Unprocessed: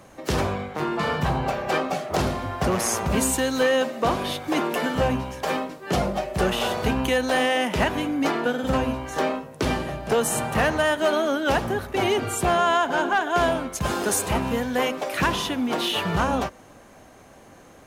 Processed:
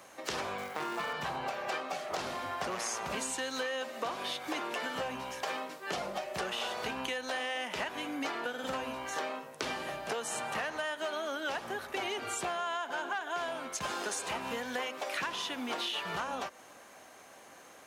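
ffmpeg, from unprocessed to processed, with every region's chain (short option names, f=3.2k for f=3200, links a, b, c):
-filter_complex "[0:a]asettb=1/sr,asplit=3[a][b][c];[a]atrim=end=0.584[d];[b]atrim=start=0.58:end=1.13,asetpts=PTS-STARTPTS,afade=t=in:d=0.004:c=qsin,afade=t=out:st=0.546:d=0.004:c=qsin,lowpass=3.9k,acrusher=bits=4:mode=log:mix=0:aa=0.000001[e];[c]atrim=start=1.126[f];[d][e]acrossfade=d=0.004:c1=hsin:c2=qsin[g];[g][f]acrossfade=d=0.004:c1=qsin:c2=hsin,acrossover=split=8200[h][i];[i]acompressor=threshold=-53dB:ratio=4:attack=1:release=60[j];[h][j]amix=inputs=2:normalize=0,highpass=f=970:p=1,acompressor=threshold=-33dB:ratio=6"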